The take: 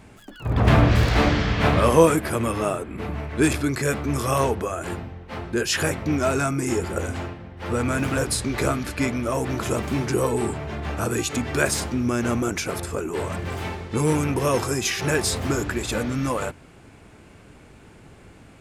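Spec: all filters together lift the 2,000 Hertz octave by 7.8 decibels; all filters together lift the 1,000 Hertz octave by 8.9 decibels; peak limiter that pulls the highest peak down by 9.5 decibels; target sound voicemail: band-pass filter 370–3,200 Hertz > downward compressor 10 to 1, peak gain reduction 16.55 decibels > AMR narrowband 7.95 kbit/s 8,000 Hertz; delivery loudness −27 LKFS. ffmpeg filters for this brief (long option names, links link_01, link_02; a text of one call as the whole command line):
ffmpeg -i in.wav -af "equalizer=frequency=1000:width_type=o:gain=9,equalizer=frequency=2000:width_type=o:gain=7.5,alimiter=limit=-7.5dB:level=0:latency=1,highpass=370,lowpass=3200,acompressor=threshold=-30dB:ratio=10,volume=8dB" -ar 8000 -c:a libopencore_amrnb -b:a 7950 out.amr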